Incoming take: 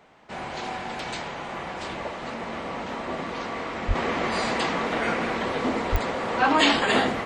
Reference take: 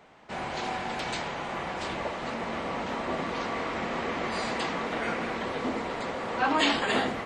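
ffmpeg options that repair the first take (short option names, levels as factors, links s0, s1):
-filter_complex "[0:a]adeclick=t=4,asplit=3[s0][s1][s2];[s0]afade=t=out:st=3.87:d=0.02[s3];[s1]highpass=f=140:w=0.5412,highpass=f=140:w=1.3066,afade=t=in:st=3.87:d=0.02,afade=t=out:st=3.99:d=0.02[s4];[s2]afade=t=in:st=3.99:d=0.02[s5];[s3][s4][s5]amix=inputs=3:normalize=0,asplit=3[s6][s7][s8];[s6]afade=t=out:st=5.91:d=0.02[s9];[s7]highpass=f=140:w=0.5412,highpass=f=140:w=1.3066,afade=t=in:st=5.91:d=0.02,afade=t=out:st=6.03:d=0.02[s10];[s8]afade=t=in:st=6.03:d=0.02[s11];[s9][s10][s11]amix=inputs=3:normalize=0,asetnsamples=n=441:p=0,asendcmd='3.95 volume volume -5dB',volume=1"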